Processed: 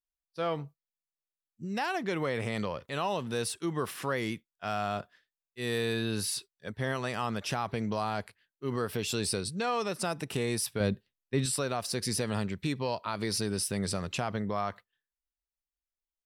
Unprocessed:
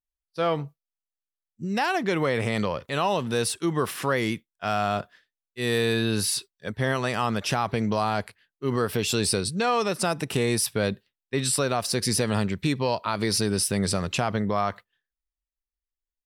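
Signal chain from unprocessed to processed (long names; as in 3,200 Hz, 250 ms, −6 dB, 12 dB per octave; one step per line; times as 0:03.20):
0:10.80–0:11.46: low-shelf EQ 370 Hz +8 dB
level −7 dB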